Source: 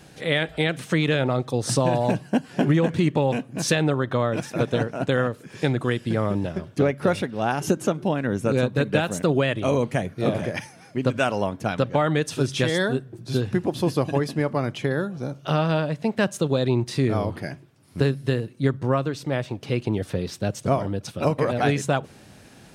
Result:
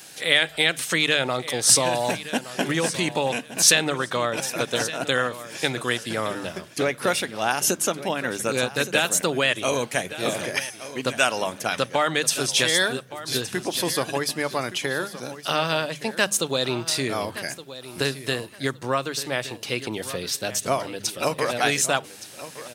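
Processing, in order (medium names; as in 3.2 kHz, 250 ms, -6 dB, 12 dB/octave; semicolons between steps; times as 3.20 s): tilt EQ +4 dB/octave; hum notches 50/100/150/200 Hz; on a send: feedback delay 1168 ms, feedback 22%, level -14.5 dB; on the sum: trim +1.5 dB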